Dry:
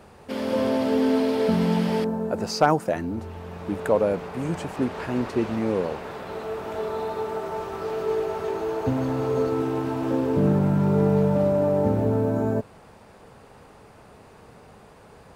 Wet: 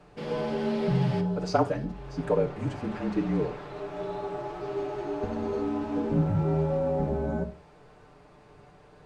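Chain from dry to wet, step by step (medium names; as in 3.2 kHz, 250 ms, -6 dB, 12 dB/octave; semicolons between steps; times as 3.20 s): distance through air 93 m; frequency shift -39 Hz; treble shelf 6.7 kHz +5.5 dB; feedback echo behind a high-pass 1085 ms, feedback 32%, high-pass 2.5 kHz, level -14 dB; time stretch by phase-locked vocoder 0.59×; on a send at -3 dB: reverberation, pre-delay 7 ms; on the sum: trim -5 dB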